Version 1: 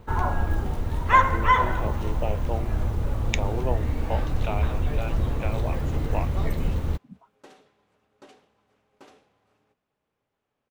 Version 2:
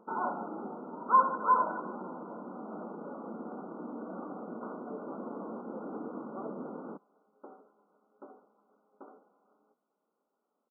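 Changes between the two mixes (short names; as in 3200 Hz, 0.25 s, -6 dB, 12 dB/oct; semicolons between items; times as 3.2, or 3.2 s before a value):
speech: muted; first sound -5.0 dB; master: add brick-wall FIR band-pass 180–1500 Hz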